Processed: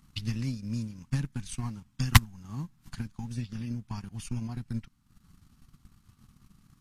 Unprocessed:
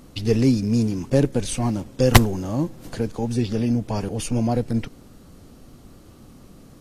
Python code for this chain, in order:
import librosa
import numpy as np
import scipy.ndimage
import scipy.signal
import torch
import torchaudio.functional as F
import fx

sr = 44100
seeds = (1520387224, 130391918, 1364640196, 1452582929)

y = scipy.signal.sosfilt(scipy.signal.cheby1(2, 1.0, [190.0, 1100.0], 'bandstop', fs=sr, output='sos'), x)
y = fx.transient(y, sr, attack_db=8, sustain_db=-9)
y = y * librosa.db_to_amplitude(-11.5)